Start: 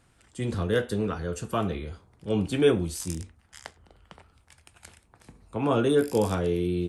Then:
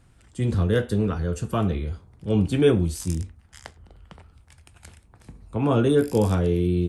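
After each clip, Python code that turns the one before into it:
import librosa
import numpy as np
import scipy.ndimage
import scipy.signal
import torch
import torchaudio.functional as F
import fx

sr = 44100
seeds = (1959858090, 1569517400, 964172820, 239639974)

y = fx.low_shelf(x, sr, hz=210.0, db=10.5)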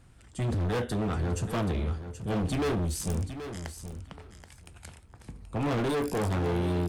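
y = np.clip(10.0 ** (26.5 / 20.0) * x, -1.0, 1.0) / 10.0 ** (26.5 / 20.0)
y = fx.echo_feedback(y, sr, ms=778, feedback_pct=15, wet_db=-10.5)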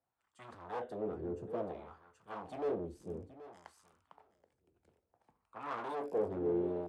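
y = fx.wah_lfo(x, sr, hz=0.58, low_hz=370.0, high_hz=1200.0, q=2.7)
y = fx.high_shelf(y, sr, hz=8400.0, db=10.5)
y = fx.band_widen(y, sr, depth_pct=40)
y = y * librosa.db_to_amplitude(-1.0)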